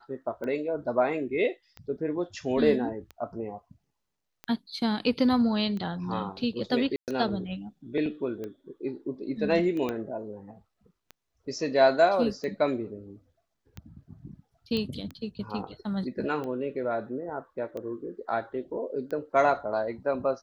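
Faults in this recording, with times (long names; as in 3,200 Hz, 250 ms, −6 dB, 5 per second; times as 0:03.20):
scratch tick 45 rpm −25 dBFS
0:06.96–0:07.08: drop-out 118 ms
0:09.89: click −18 dBFS
0:14.77: click −19 dBFS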